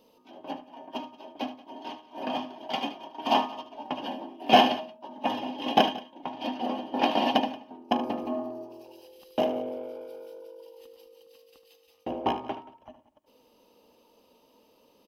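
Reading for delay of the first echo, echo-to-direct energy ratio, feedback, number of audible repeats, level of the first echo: 75 ms, -11.5 dB, no steady repeat, 2, -12.5 dB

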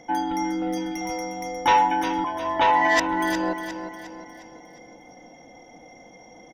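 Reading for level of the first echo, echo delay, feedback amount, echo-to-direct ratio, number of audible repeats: -9.0 dB, 0.357 s, 44%, -8.0 dB, 4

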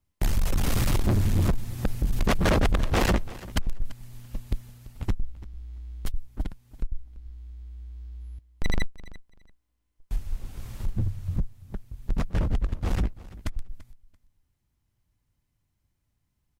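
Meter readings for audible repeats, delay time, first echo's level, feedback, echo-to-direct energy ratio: 2, 0.338 s, -18.5 dB, 19%, -18.5 dB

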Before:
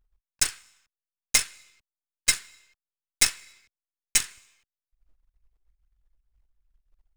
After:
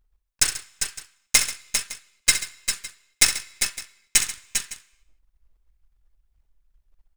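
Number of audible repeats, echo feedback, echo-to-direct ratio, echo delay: 4, no steady repeat, -4.5 dB, 64 ms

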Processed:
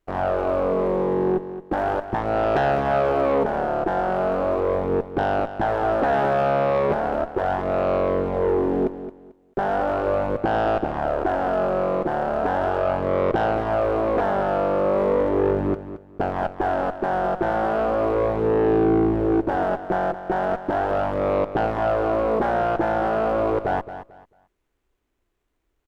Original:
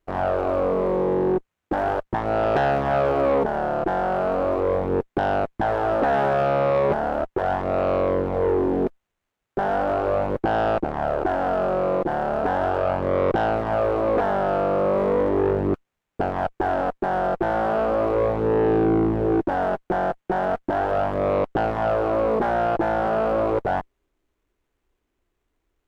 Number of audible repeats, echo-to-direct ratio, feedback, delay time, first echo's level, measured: 2, -11.5 dB, 24%, 0.221 s, -12.0 dB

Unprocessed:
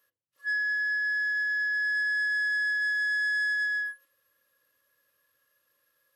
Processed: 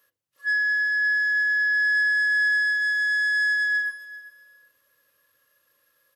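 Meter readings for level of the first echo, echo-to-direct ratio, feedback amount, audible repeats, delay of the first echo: -17.5 dB, -17.5 dB, 22%, 2, 0.391 s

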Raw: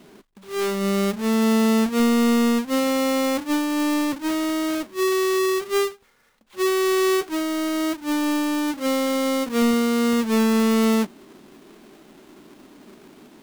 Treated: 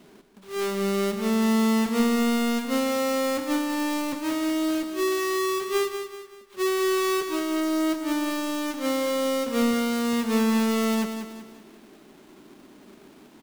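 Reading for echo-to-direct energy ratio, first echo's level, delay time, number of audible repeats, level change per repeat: -7.0 dB, -8.0 dB, 0.19 s, 4, -7.5 dB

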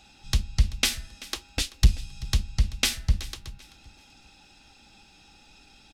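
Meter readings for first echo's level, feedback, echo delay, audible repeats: -19.0 dB, 30%, 0.385 s, 2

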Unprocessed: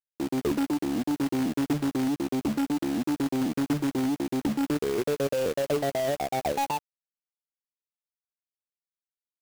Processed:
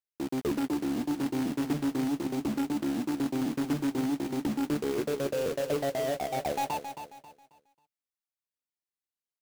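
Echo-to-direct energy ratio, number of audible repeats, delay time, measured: -8.5 dB, 3, 0.27 s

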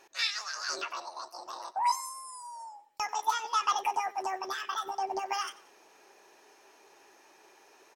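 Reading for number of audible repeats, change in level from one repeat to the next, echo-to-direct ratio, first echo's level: 2, -6.0 dB, -19.5 dB, -20.5 dB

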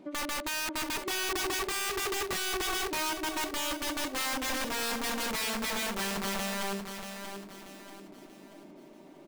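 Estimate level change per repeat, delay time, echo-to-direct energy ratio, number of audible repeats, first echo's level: -8.0 dB, 0.635 s, -7.0 dB, 4, -8.0 dB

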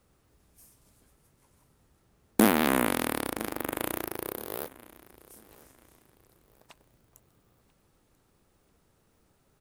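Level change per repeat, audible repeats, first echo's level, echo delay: -9.5 dB, 2, -21.0 dB, 0.989 s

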